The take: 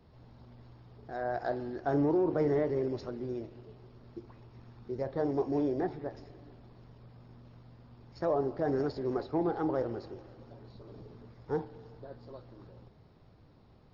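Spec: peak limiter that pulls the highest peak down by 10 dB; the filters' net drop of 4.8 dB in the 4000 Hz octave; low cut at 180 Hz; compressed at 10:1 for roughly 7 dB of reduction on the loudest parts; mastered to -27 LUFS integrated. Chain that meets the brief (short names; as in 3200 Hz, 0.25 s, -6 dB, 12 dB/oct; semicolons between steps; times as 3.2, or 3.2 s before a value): HPF 180 Hz; bell 4000 Hz -6 dB; compressor 10:1, threshold -32 dBFS; gain +17 dB; limiter -16.5 dBFS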